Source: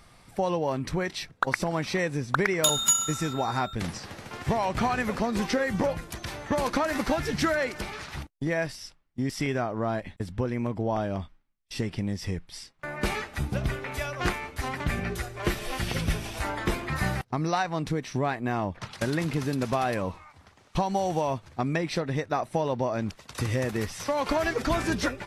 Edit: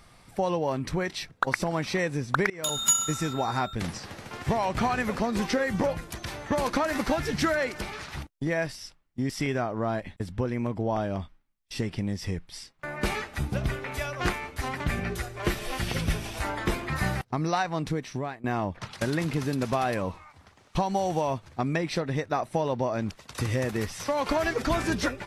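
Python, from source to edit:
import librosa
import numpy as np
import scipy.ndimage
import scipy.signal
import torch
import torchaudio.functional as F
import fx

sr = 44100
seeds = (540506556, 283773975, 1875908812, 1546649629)

y = fx.edit(x, sr, fx.fade_in_from(start_s=2.5, length_s=0.4, floor_db=-23.0),
    fx.fade_out_to(start_s=17.76, length_s=0.68, curve='qsin', floor_db=-16.5), tone=tone)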